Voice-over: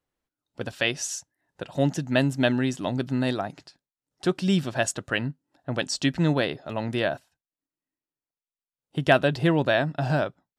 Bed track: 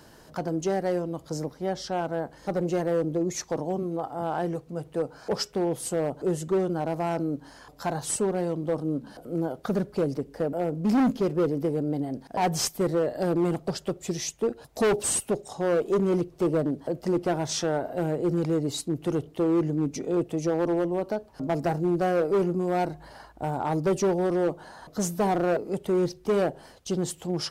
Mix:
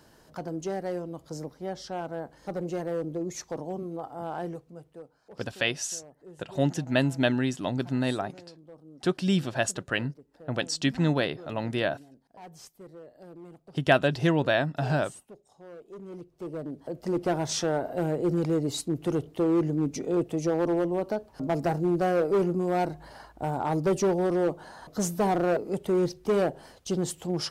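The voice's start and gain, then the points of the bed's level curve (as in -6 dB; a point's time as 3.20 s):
4.80 s, -2.0 dB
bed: 4.48 s -5.5 dB
5.22 s -22 dB
15.82 s -22 dB
17.29 s -0.5 dB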